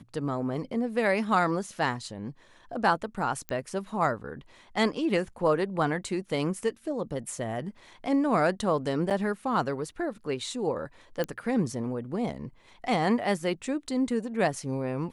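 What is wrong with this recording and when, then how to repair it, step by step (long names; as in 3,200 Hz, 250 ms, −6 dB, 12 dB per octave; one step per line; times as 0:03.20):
0:03.49: click −18 dBFS
0:09.10–0:09.11: drop-out 7.9 ms
0:11.24: click −17 dBFS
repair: click removal
repair the gap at 0:09.10, 7.9 ms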